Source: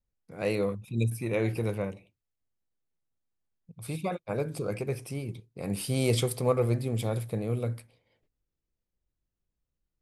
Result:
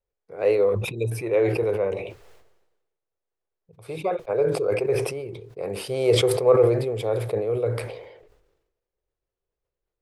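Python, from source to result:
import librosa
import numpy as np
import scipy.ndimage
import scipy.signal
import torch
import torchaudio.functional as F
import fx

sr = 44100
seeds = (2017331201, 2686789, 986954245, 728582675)

y = fx.lowpass(x, sr, hz=1600.0, slope=6)
y = fx.low_shelf_res(y, sr, hz=320.0, db=-9.0, q=3.0)
y = fx.sustainer(y, sr, db_per_s=54.0)
y = F.gain(torch.from_numpy(y), 4.5).numpy()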